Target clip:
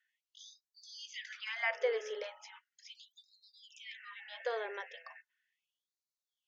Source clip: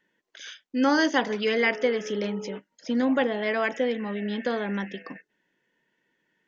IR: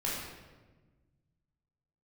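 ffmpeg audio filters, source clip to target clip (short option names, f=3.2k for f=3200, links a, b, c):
-filter_complex "[0:a]acrossover=split=2600[a][b];[b]acompressor=threshold=-40dB:ratio=4:attack=1:release=60[c];[a][c]amix=inputs=2:normalize=0,afftfilt=real='re*gte(b*sr/1024,380*pow(3800/380,0.5+0.5*sin(2*PI*0.37*pts/sr)))':imag='im*gte(b*sr/1024,380*pow(3800/380,0.5+0.5*sin(2*PI*0.37*pts/sr)))':win_size=1024:overlap=0.75,volume=-7.5dB"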